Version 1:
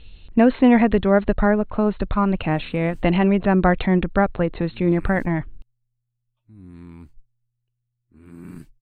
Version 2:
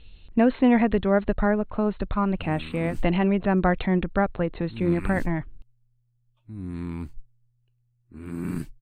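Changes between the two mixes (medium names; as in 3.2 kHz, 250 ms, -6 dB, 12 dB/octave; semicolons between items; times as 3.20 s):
speech -4.5 dB; background +8.5 dB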